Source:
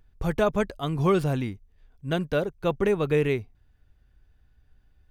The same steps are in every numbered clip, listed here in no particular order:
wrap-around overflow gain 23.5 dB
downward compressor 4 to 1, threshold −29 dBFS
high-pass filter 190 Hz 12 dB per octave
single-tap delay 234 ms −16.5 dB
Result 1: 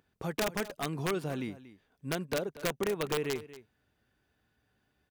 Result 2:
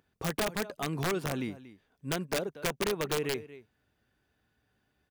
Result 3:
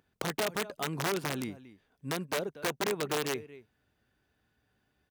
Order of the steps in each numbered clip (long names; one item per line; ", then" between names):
downward compressor, then high-pass filter, then wrap-around overflow, then single-tap delay
high-pass filter, then downward compressor, then single-tap delay, then wrap-around overflow
downward compressor, then single-tap delay, then wrap-around overflow, then high-pass filter